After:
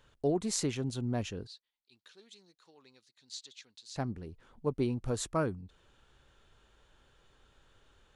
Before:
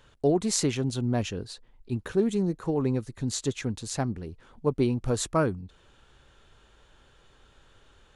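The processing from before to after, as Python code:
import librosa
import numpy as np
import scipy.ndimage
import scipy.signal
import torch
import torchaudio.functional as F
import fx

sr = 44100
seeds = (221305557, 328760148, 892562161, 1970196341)

y = fx.bandpass_q(x, sr, hz=4200.0, q=2.3, at=(1.47, 3.96))
y = y * librosa.db_to_amplitude(-6.5)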